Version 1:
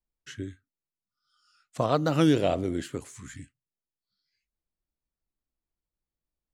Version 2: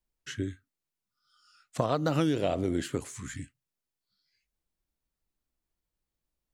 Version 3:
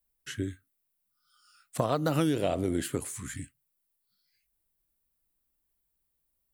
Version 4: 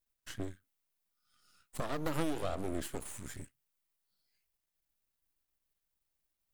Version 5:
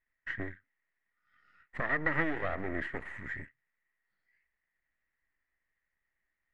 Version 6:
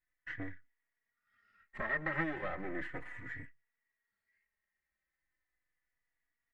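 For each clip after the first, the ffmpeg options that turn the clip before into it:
-af "acompressor=threshold=0.0447:ratio=6,volume=1.5"
-af "aexciter=amount=4.3:drive=3.8:freq=8600"
-af "aeval=exprs='max(val(0),0)':c=same,volume=0.75"
-af "lowpass=f=1900:t=q:w=13"
-filter_complex "[0:a]asplit=2[s0][s1];[s1]adelay=3.5,afreqshift=-0.36[s2];[s0][s2]amix=inputs=2:normalize=1,volume=0.891"

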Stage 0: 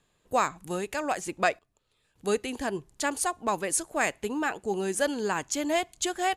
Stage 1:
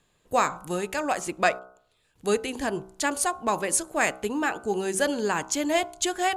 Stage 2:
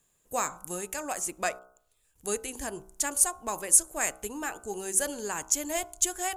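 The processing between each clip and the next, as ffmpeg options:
-af "bandreject=f=63.4:t=h:w=4,bandreject=f=126.8:t=h:w=4,bandreject=f=190.2:t=h:w=4,bandreject=f=253.6:t=h:w=4,bandreject=f=317:t=h:w=4,bandreject=f=380.4:t=h:w=4,bandreject=f=443.8:t=h:w=4,bandreject=f=507.2:t=h:w=4,bandreject=f=570.6:t=h:w=4,bandreject=f=634:t=h:w=4,bandreject=f=697.4:t=h:w=4,bandreject=f=760.8:t=h:w=4,bandreject=f=824.2:t=h:w=4,bandreject=f=887.6:t=h:w=4,bandreject=f=951:t=h:w=4,bandreject=f=1014.4:t=h:w=4,bandreject=f=1077.8:t=h:w=4,bandreject=f=1141.2:t=h:w=4,bandreject=f=1204.6:t=h:w=4,bandreject=f=1268:t=h:w=4,bandreject=f=1331.4:t=h:w=4,bandreject=f=1394.8:t=h:w=4,bandreject=f=1458.2:t=h:w=4,bandreject=f=1521.6:t=h:w=4,volume=1.41"
-af "asubboost=boost=6:cutoff=68,aexciter=amount=6.1:drive=2.1:freq=5800,volume=0.398"

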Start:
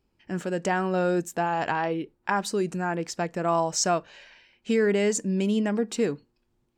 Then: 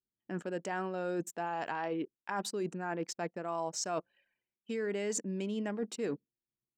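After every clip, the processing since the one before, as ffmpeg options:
-af "anlmdn=1,highpass=200,areverse,acompressor=threshold=0.0224:ratio=6,areverse"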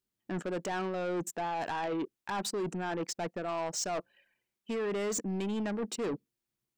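-af "asoftclip=type=tanh:threshold=0.0158,volume=2.11"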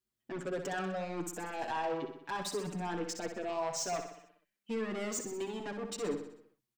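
-filter_complex "[0:a]asplit=2[s0][s1];[s1]aecho=0:1:63|126|189|252|315|378|441:0.398|0.223|0.125|0.0699|0.0392|0.0219|0.0123[s2];[s0][s2]amix=inputs=2:normalize=0,asplit=2[s3][s4];[s4]adelay=5.9,afreqshift=0.6[s5];[s3][s5]amix=inputs=2:normalize=1"

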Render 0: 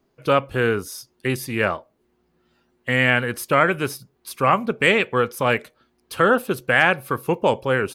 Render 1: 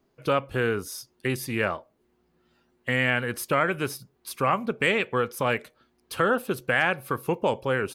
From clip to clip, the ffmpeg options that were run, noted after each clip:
-af "acompressor=threshold=0.0631:ratio=1.5,volume=0.794"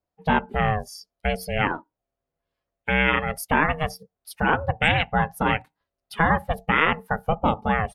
-af "afftdn=nr=20:nf=-36,aeval=exprs='val(0)*sin(2*PI*320*n/s)':c=same,volume=2"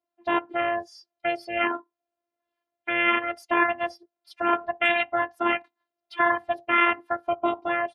-af "afftfilt=real='hypot(re,im)*cos(PI*b)':imag='0':win_size=512:overlap=0.75,highpass=180,lowpass=4000,volume=1.41"

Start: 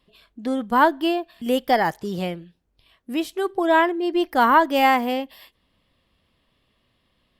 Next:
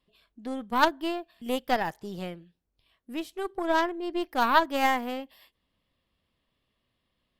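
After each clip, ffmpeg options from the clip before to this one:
-af "aeval=exprs='0.668*(cos(1*acos(clip(val(0)/0.668,-1,1)))-cos(1*PI/2))+0.168*(cos(3*acos(clip(val(0)/0.668,-1,1)))-cos(3*PI/2))+0.0596*(cos(4*acos(clip(val(0)/0.668,-1,1)))-cos(4*PI/2))+0.00944*(cos(5*acos(clip(val(0)/0.668,-1,1)))-cos(5*PI/2))+0.0106*(cos(6*acos(clip(val(0)/0.668,-1,1)))-cos(6*PI/2))':c=same"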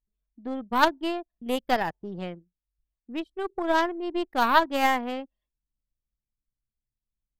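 -af "anlmdn=0.398,volume=1.19"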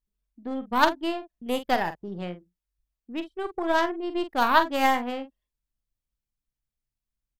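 -filter_complex "[0:a]asplit=2[s0][s1];[s1]adelay=45,volume=0.299[s2];[s0][s2]amix=inputs=2:normalize=0"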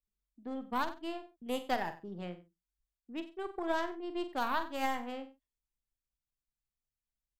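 -filter_complex "[0:a]equalizer=f=7500:t=o:w=0.32:g=3.5,acrossover=split=120[s0][s1];[s1]alimiter=limit=0.224:level=0:latency=1:release=423[s2];[s0][s2]amix=inputs=2:normalize=0,asplit=2[s3][s4];[s4]adelay=93.29,volume=0.158,highshelf=f=4000:g=-2.1[s5];[s3][s5]amix=inputs=2:normalize=0,volume=0.398"

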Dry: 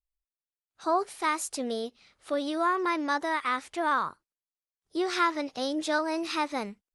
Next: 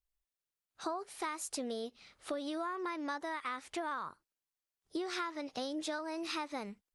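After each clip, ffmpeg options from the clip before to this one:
-af "acompressor=threshold=0.0158:ratio=10,volume=1.12"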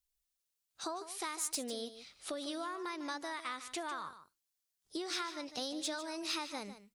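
-filter_complex "[0:a]acrossover=split=3300[s0][s1];[s1]aeval=exprs='0.0447*sin(PI/2*2*val(0)/0.0447)':c=same[s2];[s0][s2]amix=inputs=2:normalize=0,aecho=1:1:150:0.237,volume=0.708"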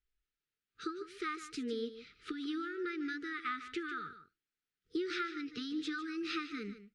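-af "lowpass=2300,afftfilt=real='re*(1-between(b*sr/4096,480,1200))':imag='im*(1-between(b*sr/4096,480,1200))':win_size=4096:overlap=0.75,volume=1.78"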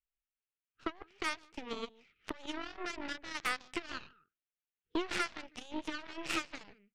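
-af "aresample=16000,aresample=44100,highshelf=f=3700:t=q:w=3:g=-9,aeval=exprs='0.075*(cos(1*acos(clip(val(0)/0.075,-1,1)))-cos(1*PI/2))+0.00133*(cos(3*acos(clip(val(0)/0.075,-1,1)))-cos(3*PI/2))+0.00168*(cos(5*acos(clip(val(0)/0.075,-1,1)))-cos(5*PI/2))+0.00596*(cos(6*acos(clip(val(0)/0.075,-1,1)))-cos(6*PI/2))+0.0133*(cos(7*acos(clip(val(0)/0.075,-1,1)))-cos(7*PI/2))':c=same,volume=1.33"

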